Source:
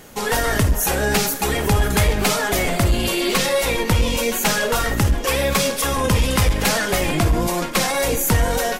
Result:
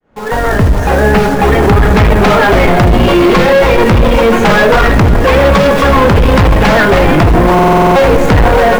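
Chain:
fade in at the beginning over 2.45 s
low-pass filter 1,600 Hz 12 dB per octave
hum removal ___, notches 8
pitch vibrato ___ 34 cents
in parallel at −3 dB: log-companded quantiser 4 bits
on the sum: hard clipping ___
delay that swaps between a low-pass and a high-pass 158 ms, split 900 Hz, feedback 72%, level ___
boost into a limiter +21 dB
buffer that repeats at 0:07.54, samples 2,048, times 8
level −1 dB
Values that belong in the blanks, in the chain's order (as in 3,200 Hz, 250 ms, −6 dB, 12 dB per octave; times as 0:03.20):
122.7 Hz, 1.1 Hz, −18 dBFS, −11 dB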